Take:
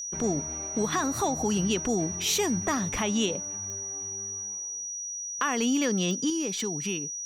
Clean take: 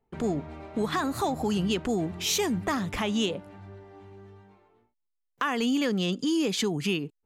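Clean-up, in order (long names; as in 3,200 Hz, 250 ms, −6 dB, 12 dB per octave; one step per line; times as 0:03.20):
click removal
notch filter 5,800 Hz, Q 30
level correction +5 dB, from 0:06.30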